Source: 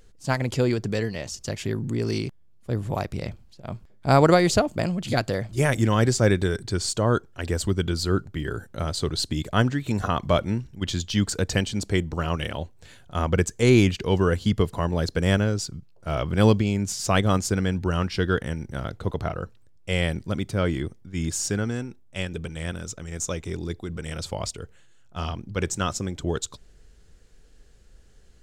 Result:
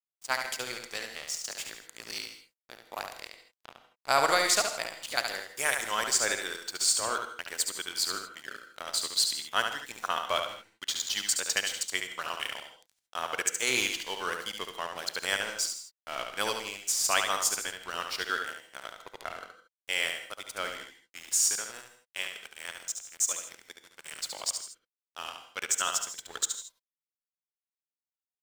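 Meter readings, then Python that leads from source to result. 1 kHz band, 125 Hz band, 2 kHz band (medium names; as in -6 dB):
-4.0 dB, -33.0 dB, -0.5 dB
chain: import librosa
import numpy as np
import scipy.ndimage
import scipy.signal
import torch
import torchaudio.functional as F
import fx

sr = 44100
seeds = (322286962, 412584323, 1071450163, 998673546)

p1 = scipy.signal.sosfilt(scipy.signal.butter(2, 1000.0, 'highpass', fs=sr, output='sos'), x)
p2 = fx.high_shelf(p1, sr, hz=8100.0, db=10.5)
p3 = np.sign(p2) * np.maximum(np.abs(p2) - 10.0 ** (-38.5 / 20.0), 0.0)
p4 = p3 + fx.echo_single(p3, sr, ms=71, db=-6.0, dry=0)
y = fx.rev_gated(p4, sr, seeds[0], gate_ms=180, shape='rising', drr_db=10.5)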